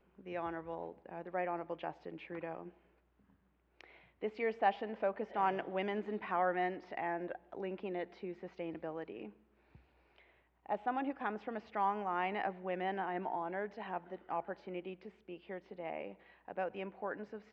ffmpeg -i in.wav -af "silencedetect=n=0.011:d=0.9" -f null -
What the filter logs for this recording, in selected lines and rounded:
silence_start: 2.63
silence_end: 3.81 | silence_duration: 1.18
silence_start: 9.25
silence_end: 10.69 | silence_duration: 1.44